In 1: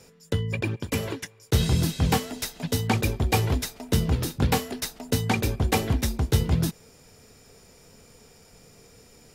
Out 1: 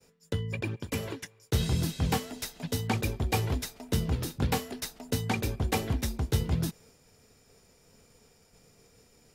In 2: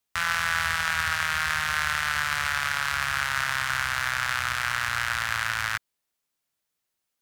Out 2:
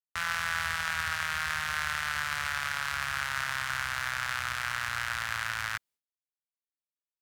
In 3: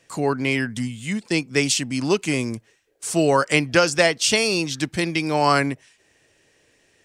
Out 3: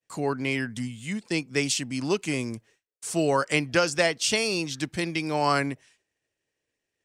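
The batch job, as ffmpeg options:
-af "agate=range=-33dB:threshold=-49dB:ratio=3:detection=peak,volume=-5.5dB"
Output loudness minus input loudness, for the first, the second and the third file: -5.5, -5.5, -5.5 LU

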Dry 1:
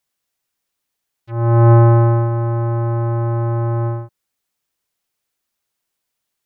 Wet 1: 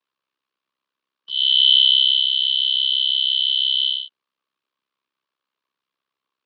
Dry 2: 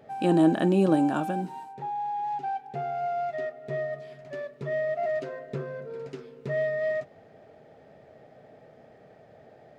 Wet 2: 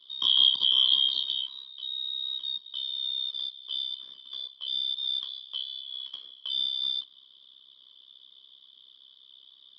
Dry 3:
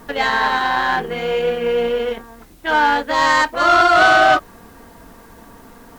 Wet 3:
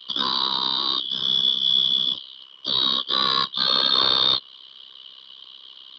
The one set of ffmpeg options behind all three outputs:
-filter_complex "[0:a]afftfilt=real='real(if(lt(b,272),68*(eq(floor(b/68),0)*2+eq(floor(b/68),1)*3+eq(floor(b/68),2)*0+eq(floor(b/68),3)*1)+mod(b,68),b),0)':imag='imag(if(lt(b,272),68*(eq(floor(b/68),0)*2+eq(floor(b/68),1)*3+eq(floor(b/68),2)*0+eq(floor(b/68),3)*1)+mod(b,68),b),0)':win_size=2048:overlap=0.75,tremolo=f=66:d=0.947,acrossover=split=310|850|2900[a][b][c][d];[d]alimiter=limit=-14dB:level=0:latency=1:release=188[e];[a][b][c][e]amix=inputs=4:normalize=0,highpass=200,equalizer=f=750:t=q:w=4:g=-9,equalizer=f=1.1k:t=q:w=4:g=9,equalizer=f=2k:t=q:w=4:g=-4,lowpass=f=3.9k:w=0.5412,lowpass=f=3.9k:w=1.3066,volume=3.5dB"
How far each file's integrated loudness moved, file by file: +0.5, +1.5, -3.5 LU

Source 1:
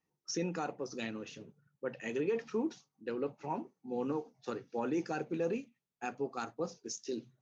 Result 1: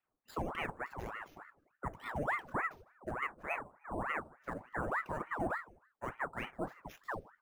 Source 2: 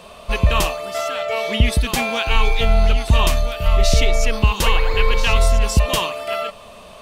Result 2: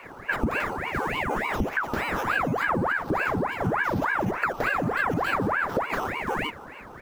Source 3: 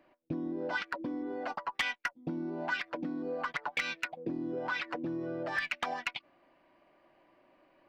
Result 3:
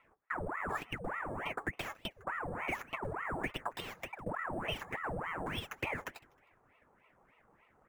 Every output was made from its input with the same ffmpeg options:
-filter_complex "[0:a]acrusher=samples=5:mix=1:aa=0.000001,highshelf=f=1.8k:t=q:w=1.5:g=-12.5,acompressor=threshold=-21dB:ratio=5,asplit=3[a][b][c];[b]adelay=156,afreqshift=-63,volume=-23dB[d];[c]adelay=312,afreqshift=-126,volume=-32.6dB[e];[a][d][e]amix=inputs=3:normalize=0,aeval=exprs='val(0)*sin(2*PI*900*n/s+900*0.85/3.4*sin(2*PI*3.4*n/s))':c=same"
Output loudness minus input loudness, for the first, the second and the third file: -2.0, -7.5, -3.5 LU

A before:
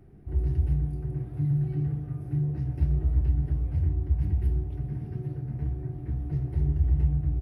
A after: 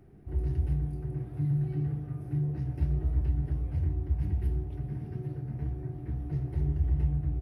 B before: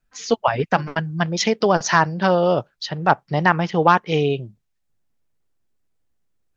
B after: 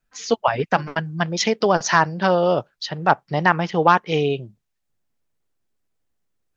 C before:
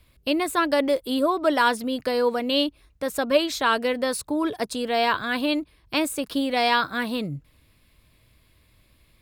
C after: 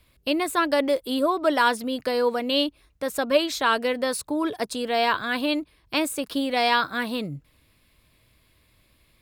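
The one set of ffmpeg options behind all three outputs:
-af "lowshelf=f=170:g=-4.5"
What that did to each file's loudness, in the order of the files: -3.5, -0.5, -0.5 LU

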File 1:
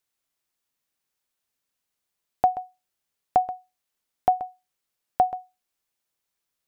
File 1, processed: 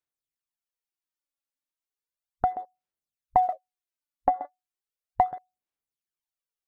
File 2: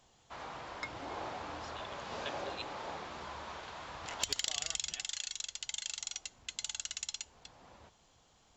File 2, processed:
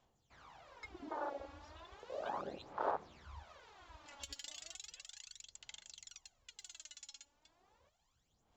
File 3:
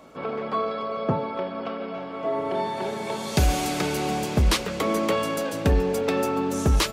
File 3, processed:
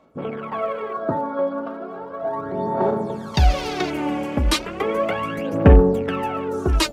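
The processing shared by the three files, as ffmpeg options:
-af "afwtdn=0.0178,aphaser=in_gain=1:out_gain=1:delay=3.6:decay=0.68:speed=0.35:type=sinusoidal"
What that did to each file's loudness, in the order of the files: -1.5, -7.5, +4.0 LU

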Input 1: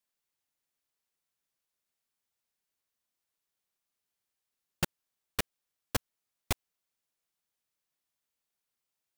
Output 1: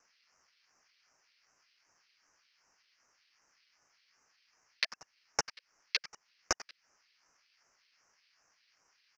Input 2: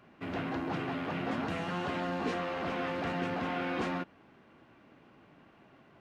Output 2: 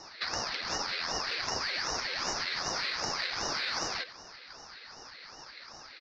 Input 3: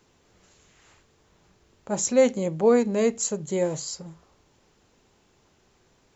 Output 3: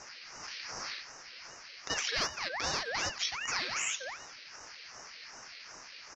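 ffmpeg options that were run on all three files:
-filter_complex "[0:a]aresample=11025,aeval=exprs='clip(val(0),-1,0.0266)':c=same,aresample=44100,highpass=f=160:t=q:w=0.5412,highpass=f=160:t=q:w=1.307,lowpass=f=3.4k:t=q:w=0.5176,lowpass=f=3.4k:t=q:w=0.7071,lowpass=f=3.4k:t=q:w=1.932,afreqshift=350,aexciter=amount=9.8:drive=9:freq=2.9k,asuperstop=centerf=880:order=12:qfactor=1.1,asplit=2[a][b];[b]aecho=0:1:91|182:0.126|0.034[c];[a][c]amix=inputs=2:normalize=0,acompressor=threshold=-38dB:ratio=4,aeval=exprs='val(0)*sin(2*PI*1700*n/s+1700*0.4/2.6*sin(2*PI*2.6*n/s))':c=same,volume=8.5dB"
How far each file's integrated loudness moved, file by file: +0.5, +3.0, -10.5 LU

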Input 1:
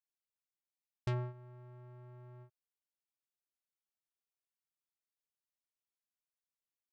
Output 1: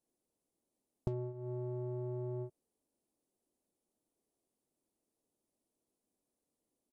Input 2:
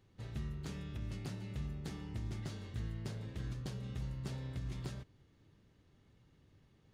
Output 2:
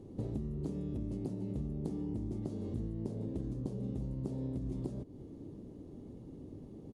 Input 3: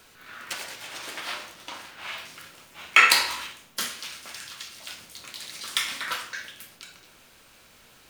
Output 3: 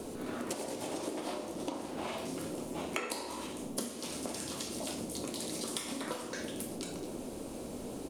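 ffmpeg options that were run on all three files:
-af "firequalizer=gain_entry='entry(120,0);entry(260,12);entry(1500,-18);entry(10000,-3);entry(15000,-20)':delay=0.05:min_phase=1,acompressor=threshold=-48dB:ratio=12,volume=13.5dB"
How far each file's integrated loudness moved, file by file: +2.5, +3.0, -13.5 LU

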